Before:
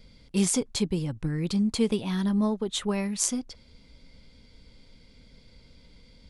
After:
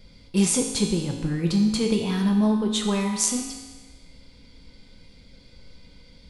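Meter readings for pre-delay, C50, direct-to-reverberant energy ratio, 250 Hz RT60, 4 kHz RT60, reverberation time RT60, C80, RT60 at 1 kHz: 4 ms, 4.5 dB, 1.0 dB, 1.3 s, 1.3 s, 1.3 s, 6.0 dB, 1.3 s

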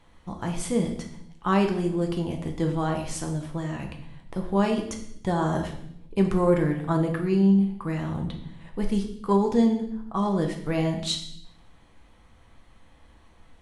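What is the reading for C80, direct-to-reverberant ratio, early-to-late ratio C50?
10.5 dB, 2.5 dB, 7.5 dB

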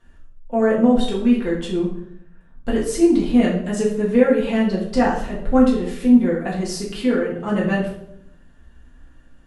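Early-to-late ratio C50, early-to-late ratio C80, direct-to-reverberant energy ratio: 5.5 dB, 8.5 dB, -5.0 dB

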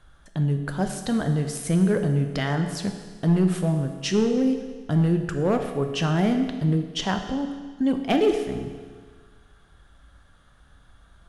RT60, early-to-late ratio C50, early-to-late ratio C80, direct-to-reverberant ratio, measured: 1.6 s, 7.0 dB, 8.5 dB, 5.0 dB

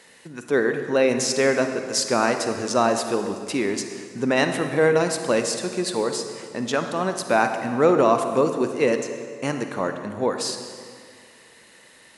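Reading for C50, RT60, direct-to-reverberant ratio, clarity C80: 7.0 dB, 2.1 s, 6.5 dB, 8.5 dB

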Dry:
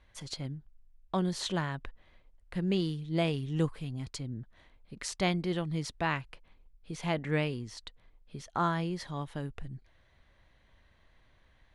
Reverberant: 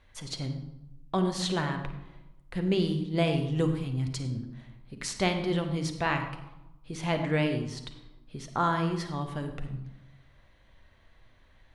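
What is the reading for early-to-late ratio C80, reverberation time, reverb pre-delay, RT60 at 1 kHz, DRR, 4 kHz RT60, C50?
9.5 dB, 1.0 s, 8 ms, 0.95 s, 5.0 dB, 0.60 s, 7.5 dB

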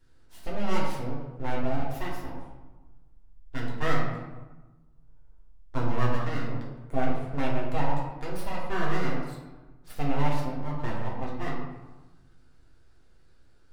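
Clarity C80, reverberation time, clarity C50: 4.5 dB, 1.2 s, 2.0 dB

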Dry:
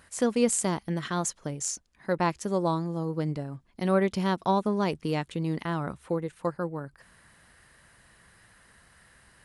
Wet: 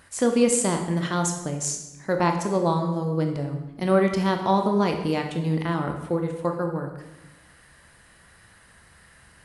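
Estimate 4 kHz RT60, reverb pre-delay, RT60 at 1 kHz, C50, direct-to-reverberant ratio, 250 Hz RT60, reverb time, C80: 0.80 s, 19 ms, 1.0 s, 6.5 dB, 4.0 dB, 1.3 s, 1.0 s, 9.0 dB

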